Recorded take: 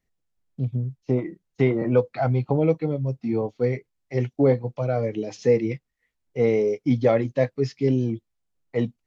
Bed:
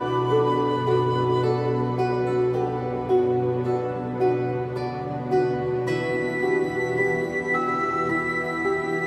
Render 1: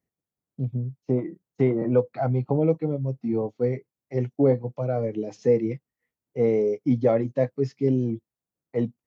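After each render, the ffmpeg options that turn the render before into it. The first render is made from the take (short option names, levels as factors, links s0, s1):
-af "highpass=110,equalizer=f=3500:w=0.43:g=-10.5"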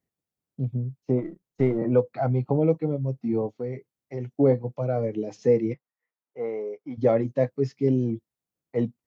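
-filter_complex "[0:a]asplit=3[s0][s1][s2];[s0]afade=t=out:st=1.21:d=0.02[s3];[s1]aeval=exprs='if(lt(val(0),0),0.708*val(0),val(0))':c=same,afade=t=in:st=1.21:d=0.02,afade=t=out:st=1.77:d=0.02[s4];[s2]afade=t=in:st=1.77:d=0.02[s5];[s3][s4][s5]amix=inputs=3:normalize=0,asettb=1/sr,asplit=3[s6][s7][s8];[s6]atrim=end=3.544[s9];[s7]atrim=start=3.54:end=4.39,asetpts=PTS-STARTPTS,afade=t=in:d=0.004:c=qsin,afade=t=out:st=0.846:d=0.004:c=qsin,acompressor=threshold=0.0316:ratio=2.5:attack=3.2:release=140:knee=1:detection=peak[s10];[s8]atrim=start=4.386[s11];[s9][s10]acrossfade=d=0.004:c1=hsin:c2=qsin[s12];[s12][s11]acrossfade=d=0.004:c1=qsin:c2=hsin,asplit=3[s13][s14][s15];[s13]afade=t=out:st=5.73:d=0.02[s16];[s14]bandpass=f=1100:t=q:w=1.2,afade=t=in:st=5.73:d=0.02,afade=t=out:st=6.97:d=0.02[s17];[s15]afade=t=in:st=6.97:d=0.02[s18];[s16][s17][s18]amix=inputs=3:normalize=0"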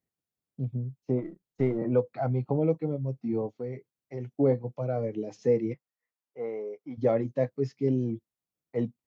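-af "volume=0.631"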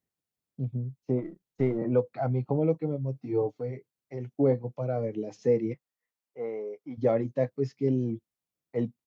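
-filter_complex "[0:a]asplit=3[s0][s1][s2];[s0]afade=t=out:st=3.14:d=0.02[s3];[s1]aecho=1:1:6.7:0.88,afade=t=in:st=3.14:d=0.02,afade=t=out:st=3.7:d=0.02[s4];[s2]afade=t=in:st=3.7:d=0.02[s5];[s3][s4][s5]amix=inputs=3:normalize=0"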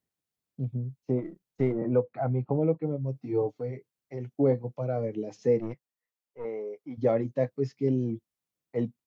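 -filter_complex "[0:a]asettb=1/sr,asplit=3[s0][s1][s2];[s0]atrim=end=1.724[s3];[s1]atrim=start=1.72:end=3.04,asetpts=PTS-STARTPTS,afade=t=in:d=0.004:c=qsin,afade=t=out:st=1.316:d=0.004:c=qsin,lowpass=2300[s4];[s2]atrim=start=3.036[s5];[s3][s4]acrossfade=d=0.004:c1=hsin:c2=qsin[s6];[s6][s5]acrossfade=d=0.004:c1=qsin:c2=hsin,asettb=1/sr,asplit=3[s7][s8][s9];[s7]atrim=end=5.594[s10];[s8]atrim=start=5.59:end=6.45,asetpts=PTS-STARTPTS,afade=t=in:d=0.004:c=qsin,afade=t=out:st=0.856:d=0.004:c=qsin,aeval=exprs='(tanh(25.1*val(0)+0.7)-tanh(0.7))/25.1':c=same[s11];[s9]atrim=start=6.446[s12];[s10][s11]acrossfade=d=0.004:c1=hsin:c2=qsin[s13];[s13][s12]acrossfade=d=0.004:c1=qsin:c2=hsin"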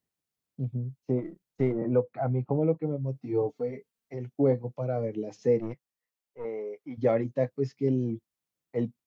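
-filter_complex "[0:a]asettb=1/sr,asplit=3[s0][s1][s2];[s0]atrim=end=3.494[s3];[s1]atrim=start=3.49:end=4.14,asetpts=PTS-STARTPTS,afade=t=in:d=0.004:c=qsin,afade=t=out:st=0.646:d=0.004:c=qsin,aecho=1:1:4.4:0.65,atrim=end_sample=28665[s4];[s2]atrim=start=4.136[s5];[s3][s4]acrossfade=d=0.004:c1=hsin:c2=qsin[s6];[s6][s5]acrossfade=d=0.004:c1=qsin:c2=hsin,asettb=1/sr,asplit=3[s7][s8][s9];[s7]atrim=end=6.584[s10];[s8]atrim=start=6.58:end=7.24,asetpts=PTS-STARTPTS,afade=t=in:d=0.004:c=qsin,afade=t=out:st=0.656:d=0.004:c=qsin,equalizer=f=2100:t=o:w=1.2:g=4.5[s11];[s9]atrim=start=7.236[s12];[s10][s11]acrossfade=d=0.004:c1=hsin:c2=qsin[s13];[s13][s12]acrossfade=d=0.004:c1=qsin:c2=hsin"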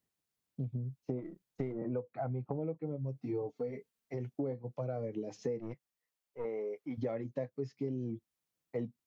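-af "acompressor=threshold=0.02:ratio=6"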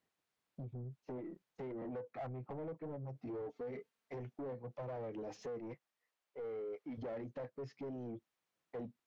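-filter_complex "[0:a]asoftclip=type=tanh:threshold=0.0126,asplit=2[s0][s1];[s1]highpass=f=720:p=1,volume=5.01,asoftclip=type=tanh:threshold=0.0126[s2];[s0][s2]amix=inputs=2:normalize=0,lowpass=f=1600:p=1,volume=0.501"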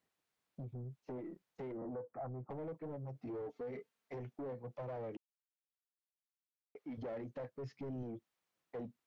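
-filter_complex "[0:a]asettb=1/sr,asplit=3[s0][s1][s2];[s0]atrim=end=1.774[s3];[s1]atrim=start=1.77:end=2.5,asetpts=PTS-STARTPTS,afade=t=in:d=0.004:c=qsin,afade=t=out:st=0.726:d=0.004:c=qsin,lowpass=f=1400:w=0.5412,lowpass=f=1400:w=1.3066[s4];[s2]atrim=start=2.496[s5];[s3][s4]acrossfade=d=0.004:c1=hsin:c2=qsin[s6];[s6][s5]acrossfade=d=0.004:c1=qsin:c2=hsin,asettb=1/sr,asplit=3[s7][s8][s9];[s7]atrim=end=7.374[s10];[s8]atrim=start=7.37:end=8.03,asetpts=PTS-STARTPTS,afade=t=in:d=0.004:c=qsin,afade=t=out:st=0.656:d=0.004:c=qsin,asubboost=boost=9.5:cutoff=220[s11];[s9]atrim=start=8.026[s12];[s10][s11]acrossfade=d=0.004:c1=hsin:c2=qsin[s13];[s13][s12]acrossfade=d=0.004:c1=qsin:c2=hsin,asplit=3[s14][s15][s16];[s14]atrim=end=5.17,asetpts=PTS-STARTPTS,afade=t=out:st=5.166:d=0.004:c=hsin[s17];[s15]atrim=start=5.17:end=6.75,asetpts=PTS-STARTPTS,volume=0[s18];[s16]atrim=start=6.75,asetpts=PTS-STARTPTS,afade=t=in:d=0.004:c=hsin[s19];[s17][s18][s19]concat=n=3:v=0:a=1"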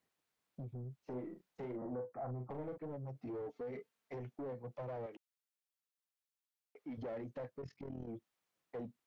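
-filter_complex "[0:a]asettb=1/sr,asplit=3[s0][s1][s2];[s0]atrim=end=0.964[s3];[s1]atrim=start=0.96:end=2.78,asetpts=PTS-STARTPTS,afade=t=in:d=0.004:c=qsin,afade=t=out:st=1.816:d=0.004:c=qsin,asplit=2[s4][s5];[s5]adelay=40,volume=0.473[s6];[s4][s6]amix=inputs=2:normalize=0,atrim=end_sample=80262[s7];[s2]atrim=start=2.776[s8];[s3][s7]acrossfade=d=0.004:c1=hsin:c2=qsin[s9];[s9][s8]acrossfade=d=0.004:c1=qsin:c2=hsin,asettb=1/sr,asplit=3[s10][s11][s12];[s10]atrim=end=5.064[s13];[s11]atrim=start=5.06:end=6.78,asetpts=PTS-STARTPTS,afade=t=in:d=0.004:c=qsin,afade=t=out:st=1.716:d=0.004:c=qsin,highpass=f=750:p=1[s14];[s12]atrim=start=6.776[s15];[s13][s14]acrossfade=d=0.004:c1=hsin:c2=qsin[s16];[s16][s15]acrossfade=d=0.004:c1=qsin:c2=hsin,asplit=3[s17][s18][s19];[s17]afade=t=out:st=7.6:d=0.02[s20];[s18]tremolo=f=41:d=0.788,afade=t=in:st=7.6:d=0.02,afade=t=out:st=8.07:d=0.02[s21];[s19]afade=t=in:st=8.07:d=0.02[s22];[s20][s21][s22]amix=inputs=3:normalize=0"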